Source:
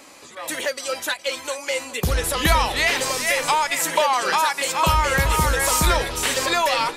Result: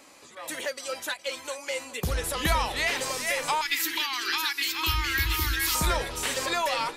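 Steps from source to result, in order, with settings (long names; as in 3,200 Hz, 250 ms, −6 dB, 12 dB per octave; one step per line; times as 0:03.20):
0:03.61–0:05.75: drawn EQ curve 110 Hz 0 dB, 150 Hz −27 dB, 330 Hz +6 dB, 540 Hz −30 dB, 890 Hz −11 dB, 1,700 Hz +2 dB, 2,800 Hz +5 dB, 4,400 Hz +8 dB, 8,600 Hz −7 dB, 14,000 Hz +11 dB
level −7 dB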